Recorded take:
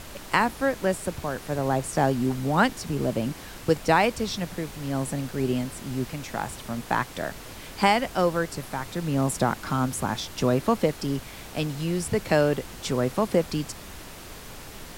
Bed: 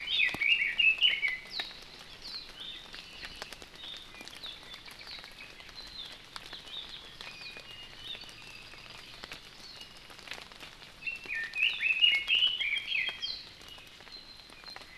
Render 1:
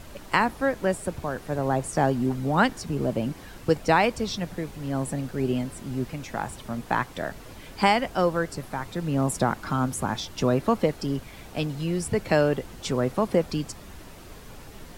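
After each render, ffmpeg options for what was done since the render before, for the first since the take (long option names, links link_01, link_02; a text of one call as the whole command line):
ffmpeg -i in.wav -af "afftdn=noise_reduction=7:noise_floor=-42" out.wav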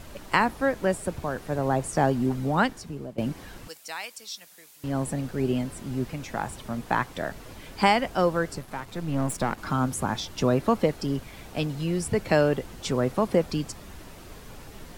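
ffmpeg -i in.wav -filter_complex "[0:a]asettb=1/sr,asplit=3[link_01][link_02][link_03];[link_01]atrim=end=3.684[link_04];[link_02]atrim=start=3.68:end=4.84,asetpts=PTS-STARTPTS,afade=type=in:duration=0.004:curve=qsin,afade=type=out:start_time=1.156:duration=0.004:curve=qsin,aderivative[link_05];[link_03]atrim=start=4.836[link_06];[link_04][link_05]acrossfade=duration=0.004:curve1=hsin:curve2=qsin[link_07];[link_07][link_06]acrossfade=duration=0.004:curve1=qsin:curve2=hsin,asettb=1/sr,asplit=3[link_08][link_09][link_10];[link_08]atrim=end=8.584[link_11];[link_09]atrim=start=8.58:end=9.58,asetpts=PTS-STARTPTS,afade=type=in:duration=0.004:curve=qsin,afade=type=out:start_time=0.996:duration=0.004:curve=qsin,aeval=exprs='if(lt(val(0),0),0.447*val(0),val(0))':channel_layout=same[link_12];[link_10]atrim=start=9.576[link_13];[link_11][link_12]acrossfade=duration=0.004:curve1=hsin:curve2=qsin[link_14];[link_14][link_13]acrossfade=duration=0.004:curve1=qsin:curve2=hsin,asplit=2[link_15][link_16];[link_15]atrim=end=3.18,asetpts=PTS-STARTPTS,afade=type=out:start_time=2.43:duration=0.75:silence=0.125893[link_17];[link_16]atrim=start=3.18,asetpts=PTS-STARTPTS,afade=type=in:duration=0.004:curve=hsin:silence=0.125893[link_18];[link_17][link_18]concat=n=2:v=0:a=1" out.wav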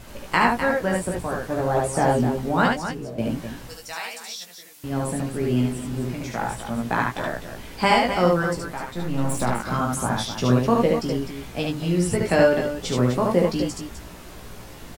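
ffmpeg -i in.wav -filter_complex "[0:a]asplit=2[link_01][link_02];[link_02]adelay=17,volume=-4dB[link_03];[link_01][link_03]amix=inputs=2:normalize=0,asplit=2[link_04][link_05];[link_05]aecho=0:1:40.82|72.89|253.6:0.251|0.794|0.355[link_06];[link_04][link_06]amix=inputs=2:normalize=0" out.wav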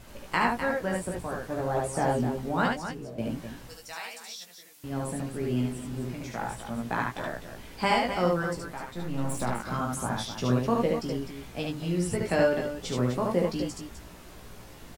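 ffmpeg -i in.wav -af "volume=-6.5dB" out.wav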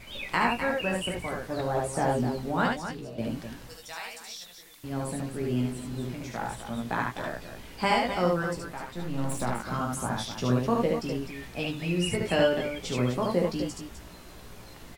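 ffmpeg -i in.wav -i bed.wav -filter_complex "[1:a]volume=-11dB[link_01];[0:a][link_01]amix=inputs=2:normalize=0" out.wav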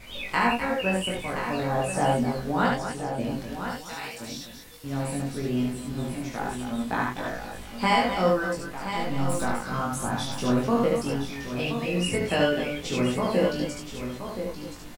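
ffmpeg -i in.wav -filter_complex "[0:a]asplit=2[link_01][link_02];[link_02]adelay=21,volume=-2dB[link_03];[link_01][link_03]amix=inputs=2:normalize=0,aecho=1:1:1023:0.355" out.wav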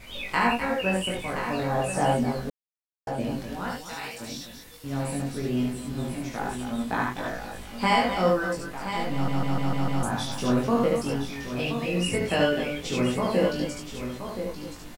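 ffmpeg -i in.wav -filter_complex "[0:a]asplit=9[link_01][link_02][link_03][link_04][link_05][link_06][link_07][link_08][link_09];[link_01]atrim=end=2.5,asetpts=PTS-STARTPTS,afade=type=out:start_time=2.496:duration=0.004:curve=hsin[link_10];[link_02]atrim=start=2.5:end=3.07,asetpts=PTS-STARTPTS,volume=0[link_11];[link_03]atrim=start=3.07:end=9.282,asetpts=PTS-STARTPTS,afade=type=in:duration=0.004:curve=hsin[link_12];[link_04]atrim=start=9.128:end=9.282[link_13];[link_05]atrim=start=9.128:end=9.282[link_14];[link_06]atrim=start=9.128:end=9.282[link_15];[link_07]atrim=start=9.128:end=9.282[link_16];[link_08]atrim=start=9.128:end=9.282[link_17];[link_09]atrim=start=10.028[link_18];[link_10][link_11][link_12]concat=n=3:v=0:a=1[link_19];[link_19][link_13]acrossfade=duration=0.004:curve1=hsin:curve2=hsin[link_20];[link_20][link_14]acrossfade=duration=0.004:curve1=hsin:curve2=hsin[link_21];[link_21][link_15]acrossfade=duration=0.004:curve1=hsin:curve2=hsin[link_22];[link_22][link_16]acrossfade=duration=0.004:curve1=hsin:curve2=hsin[link_23];[link_23][link_17]acrossfade=duration=0.004:curve1=hsin:curve2=hsin[link_24];[link_24][link_18]acrossfade=duration=0.004:curve1=hsin:curve2=hsin" out.wav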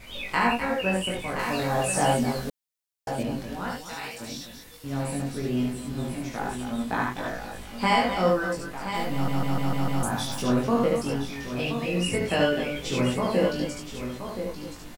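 ffmpeg -i in.wav -filter_complex "[0:a]asettb=1/sr,asplit=3[link_01][link_02][link_03];[link_01]atrim=end=1.394[link_04];[link_02]atrim=start=1.39:end=3.23,asetpts=PTS-STARTPTS,afade=type=in:duration=0.004:curve=qsin,afade=type=out:start_time=1.836:duration=0.004:curve=qsin,highshelf=frequency=2700:gain=8.5[link_05];[link_03]atrim=start=3.226[link_06];[link_04][link_05]acrossfade=duration=0.004:curve1=hsin:curve2=qsin[link_07];[link_07][link_06]acrossfade=duration=0.004:curve1=qsin:curve2=hsin,asettb=1/sr,asplit=3[link_08][link_09][link_10];[link_08]atrim=end=8.944[link_11];[link_09]atrim=start=8.94:end=10.42,asetpts=PTS-STARTPTS,afade=type=in:duration=0.004:curve=qsin,afade=type=out:start_time=1.476:duration=0.004:curve=qsin,highshelf=frequency=11000:gain=10.5[link_12];[link_10]atrim=start=10.416[link_13];[link_11][link_12]acrossfade=duration=0.004:curve1=hsin:curve2=qsin[link_14];[link_14][link_13]acrossfade=duration=0.004:curve1=qsin:curve2=hsin,asettb=1/sr,asplit=3[link_15][link_16][link_17];[link_15]atrim=end=12.744[link_18];[link_16]atrim=start=12.74:end=13.14,asetpts=PTS-STARTPTS,afade=type=in:duration=0.004:curve=qsin,afade=type=out:start_time=0.396:duration=0.004:curve=qsin,asplit=2[link_19][link_20];[link_20]adelay=15,volume=-6dB[link_21];[link_19][link_21]amix=inputs=2:normalize=0,atrim=end_sample=17640[link_22];[link_17]atrim=start=13.136[link_23];[link_18][link_22]acrossfade=duration=0.004:curve1=hsin:curve2=qsin[link_24];[link_24][link_23]acrossfade=duration=0.004:curve1=qsin:curve2=hsin" out.wav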